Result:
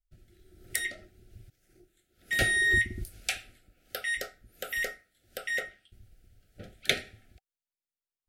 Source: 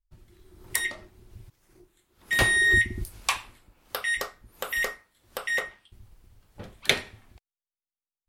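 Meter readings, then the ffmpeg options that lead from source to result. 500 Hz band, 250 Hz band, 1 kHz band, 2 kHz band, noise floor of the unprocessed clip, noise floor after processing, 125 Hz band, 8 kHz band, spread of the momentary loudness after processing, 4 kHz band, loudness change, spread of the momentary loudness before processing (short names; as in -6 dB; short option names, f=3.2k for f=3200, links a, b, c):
-4.0 dB, -4.0 dB, -10.5 dB, -4.0 dB, under -85 dBFS, under -85 dBFS, -4.0 dB, -4.0 dB, 18 LU, -4.0 dB, -4.0 dB, 18 LU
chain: -af "asuperstop=centerf=1000:order=20:qfactor=2,volume=-4dB"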